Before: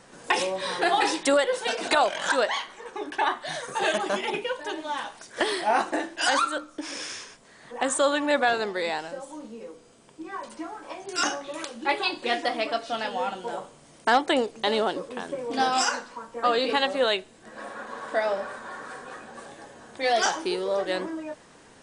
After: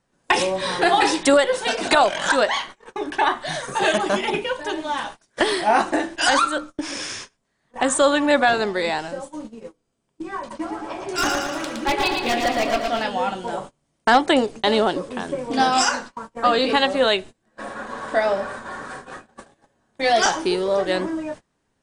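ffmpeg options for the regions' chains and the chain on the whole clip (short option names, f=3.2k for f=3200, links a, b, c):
-filter_complex "[0:a]asettb=1/sr,asplit=3[a][b][c];[a]atrim=end=10.394[d];[b]atrim=start=10.39:end=13.02,asetpts=PTS-STARTPTS,afade=t=in:d=0.004:c=qsin,afade=t=out:st=2.626:d=0.004:c=qsin,highshelf=f=4.8k:g=-6,aeval=exprs='0.106*(abs(mod(val(0)/0.106+3,4)-2)-1)':c=same,aecho=1:1:114|228|342|456|570|684|798|912:0.631|0.353|0.198|0.111|0.0621|0.0347|0.0195|0.0109,atrim=end_sample=115983[e];[c]atrim=start=13.016[f];[d][e]acrossfade=d=0.004:c1=hsin:c2=qsin[g];[g][f]acrossfade=d=0.004:c1=qsin:c2=hsin,bandreject=f=480:w=15,agate=range=-26dB:threshold=-40dB:ratio=16:detection=peak,lowshelf=f=160:g=11,volume=5dB"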